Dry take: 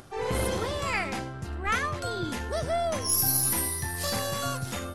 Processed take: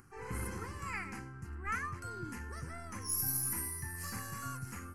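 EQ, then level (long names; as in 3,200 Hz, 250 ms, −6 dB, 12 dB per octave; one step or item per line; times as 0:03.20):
phaser with its sweep stopped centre 1,500 Hz, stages 4
−8.5 dB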